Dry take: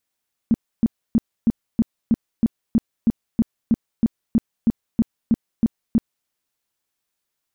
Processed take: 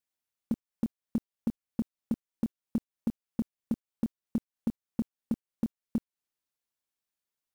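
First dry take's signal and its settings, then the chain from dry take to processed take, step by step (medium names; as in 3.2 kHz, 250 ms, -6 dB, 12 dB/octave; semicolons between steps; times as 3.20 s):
tone bursts 228 Hz, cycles 7, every 0.32 s, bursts 18, -11.5 dBFS
gate -23 dBFS, range -11 dB; compression 10:1, threshold -28 dBFS; short-mantissa float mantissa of 4-bit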